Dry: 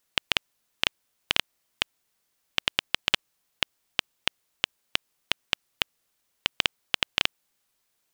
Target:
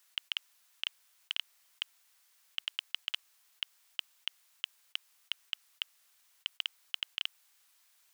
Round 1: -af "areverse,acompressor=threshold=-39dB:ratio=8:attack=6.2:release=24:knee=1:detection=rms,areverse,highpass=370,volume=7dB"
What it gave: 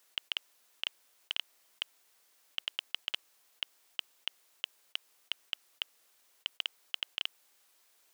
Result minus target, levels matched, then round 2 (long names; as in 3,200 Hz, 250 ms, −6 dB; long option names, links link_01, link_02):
500 Hz band +9.5 dB
-af "areverse,acompressor=threshold=-39dB:ratio=8:attack=6.2:release=24:knee=1:detection=rms,areverse,highpass=1000,volume=7dB"